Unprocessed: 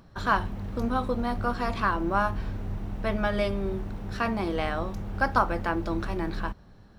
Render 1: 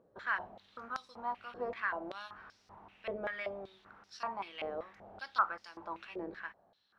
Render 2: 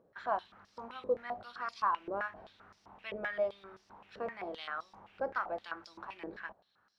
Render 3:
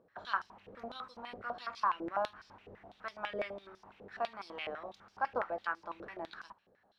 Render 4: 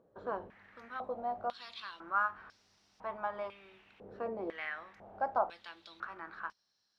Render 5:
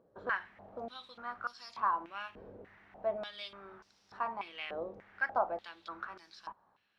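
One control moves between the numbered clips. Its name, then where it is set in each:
band-pass on a step sequencer, speed: 5.2, 7.7, 12, 2, 3.4 Hertz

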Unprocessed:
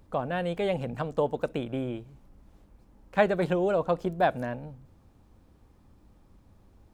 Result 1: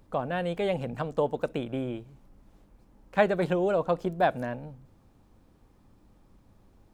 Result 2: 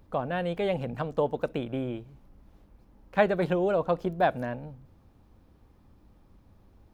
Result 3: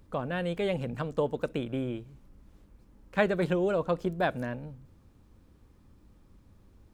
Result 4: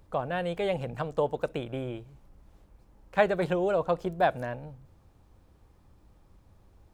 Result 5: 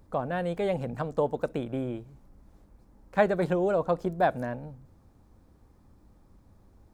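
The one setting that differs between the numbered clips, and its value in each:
parametric band, centre frequency: 69, 7,900, 750, 240, 2,900 Hertz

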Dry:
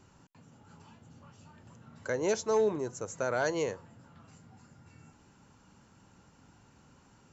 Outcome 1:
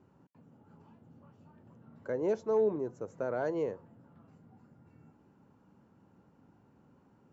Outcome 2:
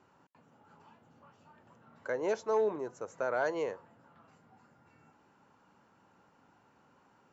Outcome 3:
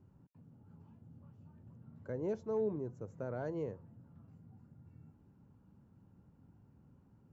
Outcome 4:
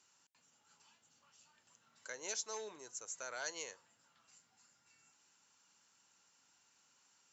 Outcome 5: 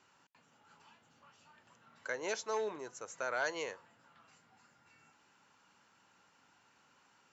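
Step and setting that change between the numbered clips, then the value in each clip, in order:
resonant band-pass, frequency: 310, 850, 110, 7,200, 2,300 Hertz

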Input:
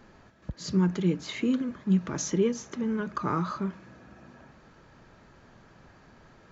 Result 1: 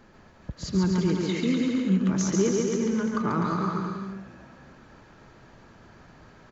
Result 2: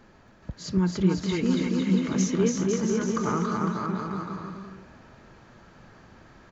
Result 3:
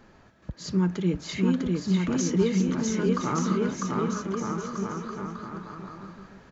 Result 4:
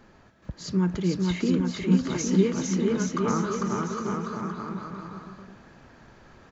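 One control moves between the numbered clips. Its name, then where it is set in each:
bouncing-ball delay, first gap: 140, 280, 650, 450 milliseconds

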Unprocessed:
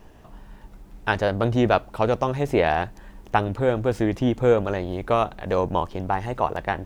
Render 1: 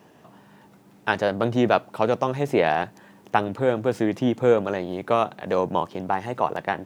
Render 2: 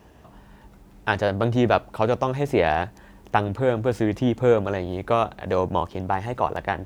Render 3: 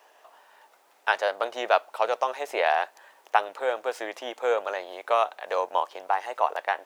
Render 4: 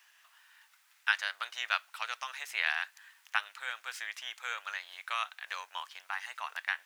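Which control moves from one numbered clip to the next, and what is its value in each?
high-pass filter, corner frequency: 130, 48, 570, 1,500 Hertz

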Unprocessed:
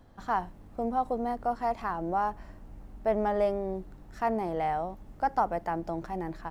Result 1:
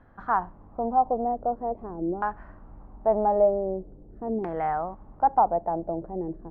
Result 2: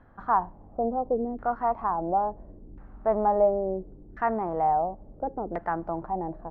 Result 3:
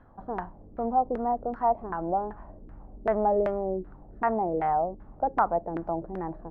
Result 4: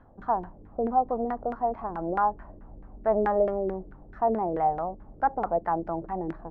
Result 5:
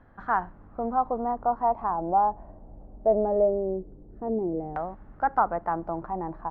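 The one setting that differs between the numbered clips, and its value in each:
auto-filter low-pass, speed: 0.45, 0.72, 2.6, 4.6, 0.21 Hertz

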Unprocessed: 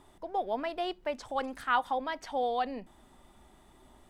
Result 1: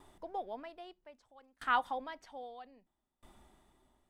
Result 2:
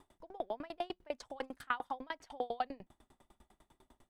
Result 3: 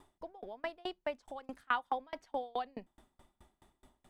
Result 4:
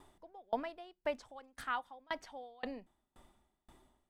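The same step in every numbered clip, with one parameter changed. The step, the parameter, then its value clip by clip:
tremolo with a ramp in dB, speed: 0.62, 10, 4.7, 1.9 Hertz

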